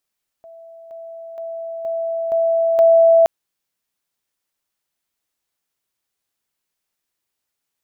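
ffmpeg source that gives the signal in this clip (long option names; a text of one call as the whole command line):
ffmpeg -f lavfi -i "aevalsrc='pow(10,(-38+6*floor(t/0.47))/20)*sin(2*PI*662*t)':duration=2.82:sample_rate=44100" out.wav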